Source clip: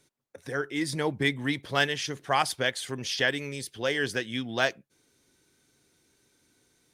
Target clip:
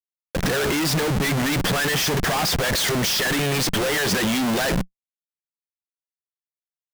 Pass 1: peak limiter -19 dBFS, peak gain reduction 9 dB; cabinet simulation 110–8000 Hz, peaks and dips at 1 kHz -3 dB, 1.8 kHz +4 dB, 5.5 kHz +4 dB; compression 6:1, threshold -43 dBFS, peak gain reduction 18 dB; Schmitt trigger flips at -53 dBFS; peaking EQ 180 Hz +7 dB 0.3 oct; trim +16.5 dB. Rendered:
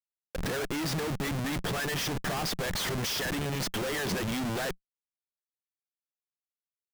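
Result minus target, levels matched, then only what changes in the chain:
compression: peak gain reduction +10 dB
change: compression 6:1, threshold -31 dBFS, peak gain reduction 8 dB

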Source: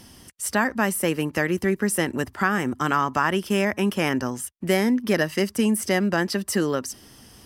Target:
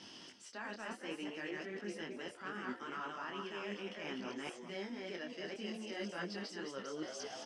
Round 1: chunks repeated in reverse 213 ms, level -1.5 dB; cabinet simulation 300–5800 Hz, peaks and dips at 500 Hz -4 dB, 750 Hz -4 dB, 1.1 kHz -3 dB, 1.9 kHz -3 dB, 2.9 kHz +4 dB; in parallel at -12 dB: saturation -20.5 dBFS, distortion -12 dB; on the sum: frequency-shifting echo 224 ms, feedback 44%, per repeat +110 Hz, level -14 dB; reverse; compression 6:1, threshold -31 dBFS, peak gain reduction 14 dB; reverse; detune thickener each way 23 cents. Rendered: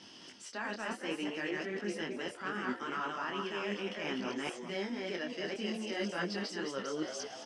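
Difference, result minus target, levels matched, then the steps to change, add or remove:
compression: peak gain reduction -6.5 dB
change: compression 6:1, threshold -38.5 dBFS, peak gain reduction 20 dB

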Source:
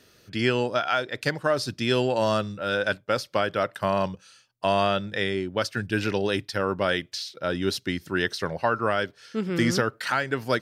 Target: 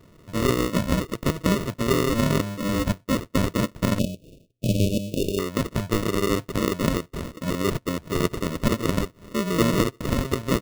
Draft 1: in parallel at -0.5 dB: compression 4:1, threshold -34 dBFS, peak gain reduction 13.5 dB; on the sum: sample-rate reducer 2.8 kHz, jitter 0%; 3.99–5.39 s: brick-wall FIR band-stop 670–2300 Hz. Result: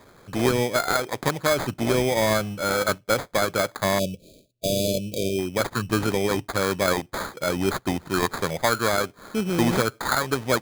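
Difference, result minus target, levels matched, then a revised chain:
sample-rate reducer: distortion -21 dB
in parallel at -0.5 dB: compression 4:1, threshold -34 dBFS, peak gain reduction 13.5 dB; on the sum: sample-rate reducer 800 Hz, jitter 0%; 3.99–5.39 s: brick-wall FIR band-stop 670–2300 Hz

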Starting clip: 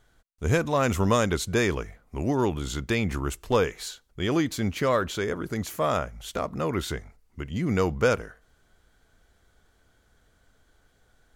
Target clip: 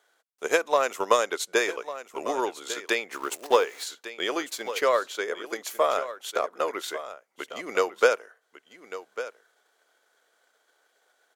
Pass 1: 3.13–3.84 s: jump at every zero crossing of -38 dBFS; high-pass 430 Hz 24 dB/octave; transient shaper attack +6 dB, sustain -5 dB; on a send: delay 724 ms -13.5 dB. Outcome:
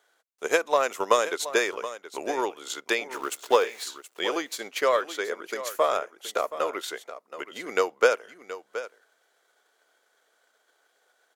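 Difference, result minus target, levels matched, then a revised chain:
echo 425 ms early
3.13–3.84 s: jump at every zero crossing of -38 dBFS; high-pass 430 Hz 24 dB/octave; transient shaper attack +6 dB, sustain -5 dB; on a send: delay 1149 ms -13.5 dB

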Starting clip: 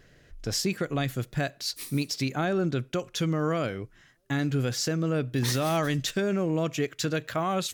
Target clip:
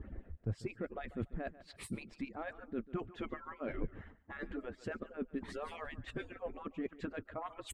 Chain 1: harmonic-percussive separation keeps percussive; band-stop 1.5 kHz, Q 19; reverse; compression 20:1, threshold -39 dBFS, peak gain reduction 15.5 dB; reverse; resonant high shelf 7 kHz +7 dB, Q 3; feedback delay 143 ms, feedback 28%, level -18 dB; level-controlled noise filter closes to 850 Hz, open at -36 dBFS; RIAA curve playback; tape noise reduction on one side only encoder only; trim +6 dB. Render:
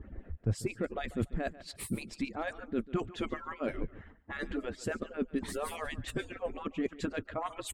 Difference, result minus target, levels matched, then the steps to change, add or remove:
compression: peak gain reduction -6.5 dB
change: compression 20:1, threshold -46 dBFS, peak gain reduction 22 dB

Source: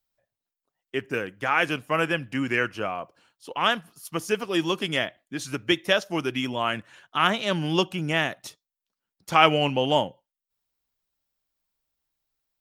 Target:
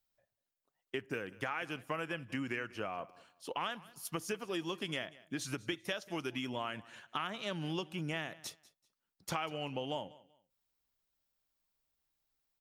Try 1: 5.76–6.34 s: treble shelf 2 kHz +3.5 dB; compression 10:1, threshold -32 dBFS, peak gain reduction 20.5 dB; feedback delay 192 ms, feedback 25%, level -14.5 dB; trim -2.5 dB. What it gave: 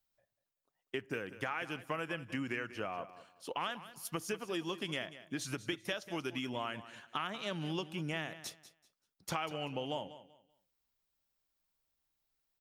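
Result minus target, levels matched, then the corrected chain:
echo-to-direct +6 dB
5.76–6.34 s: treble shelf 2 kHz +3.5 dB; compression 10:1, threshold -32 dBFS, peak gain reduction 20.5 dB; feedback delay 192 ms, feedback 25%, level -20.5 dB; trim -2.5 dB

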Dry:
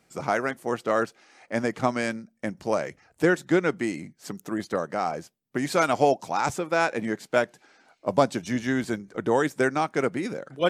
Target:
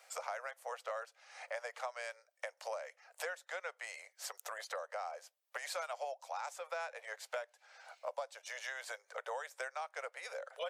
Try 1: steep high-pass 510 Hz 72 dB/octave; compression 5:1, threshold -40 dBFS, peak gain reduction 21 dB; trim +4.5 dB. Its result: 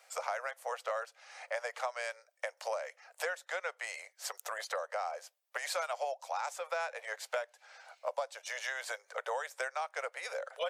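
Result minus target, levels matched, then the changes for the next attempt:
compression: peak gain reduction -5 dB
change: compression 5:1, threshold -46.5 dBFS, peak gain reduction 26.5 dB

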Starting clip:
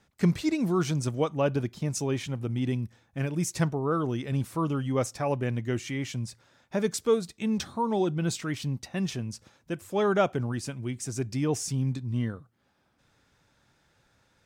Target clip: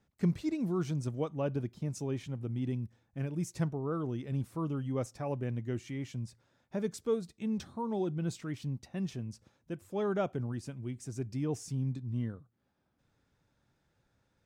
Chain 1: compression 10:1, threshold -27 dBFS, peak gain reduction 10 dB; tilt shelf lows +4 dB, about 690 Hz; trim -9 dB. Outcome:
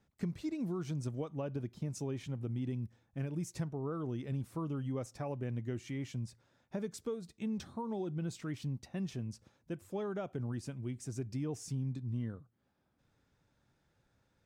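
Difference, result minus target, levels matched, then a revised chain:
compression: peak gain reduction +10 dB
tilt shelf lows +4 dB, about 690 Hz; trim -9 dB

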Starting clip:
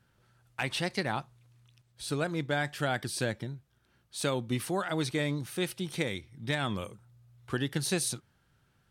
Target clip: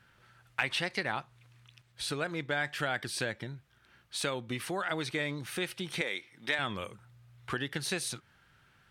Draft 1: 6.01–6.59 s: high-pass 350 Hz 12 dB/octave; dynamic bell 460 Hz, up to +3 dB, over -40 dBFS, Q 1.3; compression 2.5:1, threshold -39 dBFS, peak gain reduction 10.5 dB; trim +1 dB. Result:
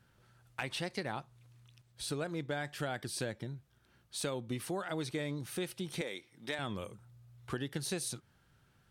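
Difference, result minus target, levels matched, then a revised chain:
2 kHz band -5.0 dB
6.01–6.59 s: high-pass 350 Hz 12 dB/octave; dynamic bell 460 Hz, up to +3 dB, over -40 dBFS, Q 1.3; compression 2.5:1, threshold -39 dBFS, peak gain reduction 10.5 dB; peaking EQ 2 kHz +10 dB 2.3 oct; trim +1 dB

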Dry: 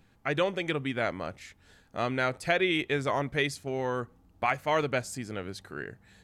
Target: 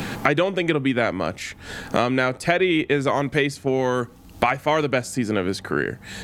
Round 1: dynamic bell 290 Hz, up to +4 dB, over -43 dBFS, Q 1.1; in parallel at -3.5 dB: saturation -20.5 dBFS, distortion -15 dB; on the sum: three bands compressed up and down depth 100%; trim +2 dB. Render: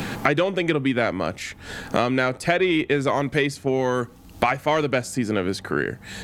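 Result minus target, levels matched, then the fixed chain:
saturation: distortion +16 dB
dynamic bell 290 Hz, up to +4 dB, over -43 dBFS, Q 1.1; in parallel at -3.5 dB: saturation -10 dBFS, distortion -31 dB; on the sum: three bands compressed up and down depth 100%; trim +2 dB

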